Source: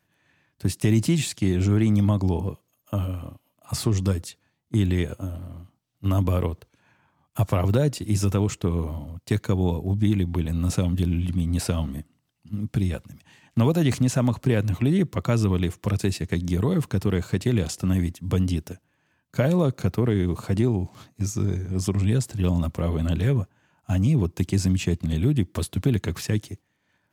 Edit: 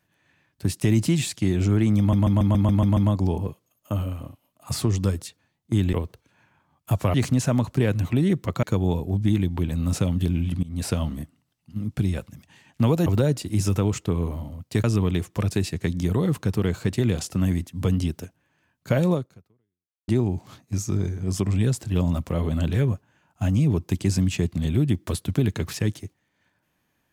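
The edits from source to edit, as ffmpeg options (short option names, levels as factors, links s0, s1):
-filter_complex "[0:a]asplit=15[s0][s1][s2][s3][s4][s5][s6][s7][s8][s9][s10][s11][s12][s13][s14];[s0]atrim=end=2.132[s15];[s1]atrim=start=1.988:end=2.132[s16];[s2]atrim=start=1.988:end=2.132[s17];[s3]atrim=start=1.988:end=2.132[s18];[s4]atrim=start=1.988:end=2.132[s19];[s5]atrim=start=1.988:end=2.132[s20];[s6]atrim=start=1.988:end=2.132[s21];[s7]atrim=start=1.988:end=4.952[s22];[s8]atrim=start=6.408:end=7.622[s23];[s9]atrim=start=13.828:end=15.322[s24];[s10]atrim=start=9.398:end=11.4,asetpts=PTS-STARTPTS,afade=t=out:st=1.998:d=0.004:c=hsin:silence=0.0794328[s25];[s11]atrim=start=11.4:end=13.832,asetpts=PTS-STARTPTS,afade=t=in:d=0.26:silence=0.0794328[s26];[s12]atrim=start=7.618:end=9.402[s27];[s13]atrim=start=15.318:end=20.56,asetpts=PTS-STARTPTS,afade=t=out:st=4.292:d=0.95:c=exp[s28];[s14]atrim=start=20.56,asetpts=PTS-STARTPTS,afade=t=in:d=0.004:c=hsin[s29];[s15][s16]acrossfade=d=0.004:c1=hsin:c2=hsin[s30];[s30][s17]acrossfade=d=0.004:c1=hsin:c2=hsin[s31];[s31][s18]acrossfade=d=0.004:c1=hsin:c2=hsin[s32];[s32][s19]acrossfade=d=0.004:c1=hsin:c2=hsin[s33];[s33][s20]acrossfade=d=0.004:c1=hsin:c2=hsin[s34];[s34][s21]acrossfade=d=0.004:c1=hsin:c2=hsin[s35];[s35][s22]acrossfade=d=0.004:c1=hsin:c2=hsin[s36];[s36][s23]acrossfade=d=0.004:c1=hsin:c2=hsin[s37];[s37][s24]acrossfade=d=0.004:c1=hsin:c2=hsin[s38];[s25][s26]concat=n=2:v=0:a=1[s39];[s38][s39]acrossfade=d=0.004:c1=hsin:c2=hsin[s40];[s40][s27]acrossfade=d=0.004:c1=hsin:c2=hsin[s41];[s28][s29]concat=n=2:v=0:a=1[s42];[s41][s42]acrossfade=d=0.004:c1=hsin:c2=hsin"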